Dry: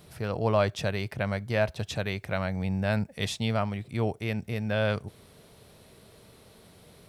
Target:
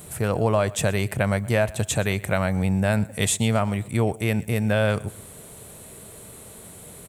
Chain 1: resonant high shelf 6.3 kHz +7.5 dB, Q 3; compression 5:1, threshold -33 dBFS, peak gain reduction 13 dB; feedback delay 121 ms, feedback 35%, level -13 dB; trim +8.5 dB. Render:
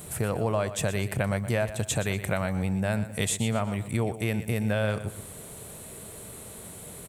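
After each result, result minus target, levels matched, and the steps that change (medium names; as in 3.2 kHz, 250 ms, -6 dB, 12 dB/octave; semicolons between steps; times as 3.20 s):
compression: peak gain reduction +6 dB; echo-to-direct +8.5 dB
change: compression 5:1, threshold -25.5 dBFS, peak gain reduction 7 dB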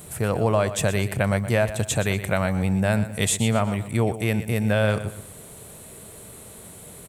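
echo-to-direct +8.5 dB
change: feedback delay 121 ms, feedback 35%, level -21.5 dB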